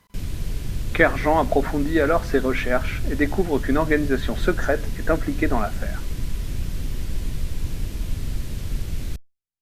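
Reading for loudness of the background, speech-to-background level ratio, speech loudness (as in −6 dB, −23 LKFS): −31.5 LKFS, 8.5 dB, −23.0 LKFS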